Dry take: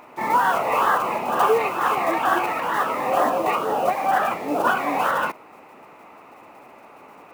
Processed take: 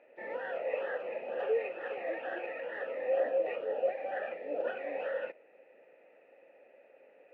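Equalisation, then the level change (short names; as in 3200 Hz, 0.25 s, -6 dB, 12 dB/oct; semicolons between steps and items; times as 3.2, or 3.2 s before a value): vowel filter e; air absorption 250 m; high shelf 11000 Hz +12 dB; -1.5 dB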